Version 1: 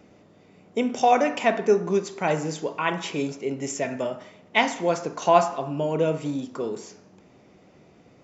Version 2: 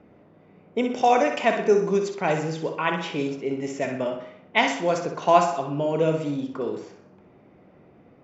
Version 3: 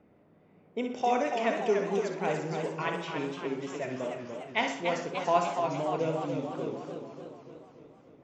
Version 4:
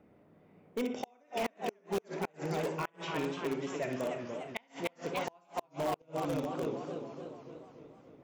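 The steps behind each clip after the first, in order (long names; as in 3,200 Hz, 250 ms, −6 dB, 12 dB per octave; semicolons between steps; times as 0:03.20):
flutter between parallel walls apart 10.7 metres, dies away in 0.52 s; low-pass that shuts in the quiet parts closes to 1,900 Hz, open at −15.5 dBFS
feedback echo with a swinging delay time 292 ms, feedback 60%, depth 136 cents, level −6 dB; level −8.5 dB
gate with flip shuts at −19 dBFS, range −36 dB; in parallel at −9.5 dB: wrap-around overflow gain 25 dB; on the sum: level −3 dB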